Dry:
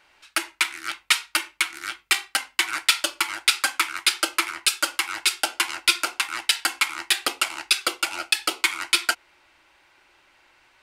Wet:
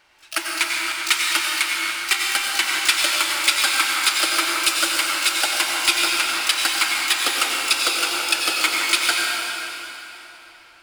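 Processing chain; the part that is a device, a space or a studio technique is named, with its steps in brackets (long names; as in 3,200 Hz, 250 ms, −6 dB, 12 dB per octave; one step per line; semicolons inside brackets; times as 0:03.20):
shimmer-style reverb (pitch-shifted copies added +12 semitones −10 dB; convolution reverb RT60 3.5 s, pre-delay 80 ms, DRR −2 dB)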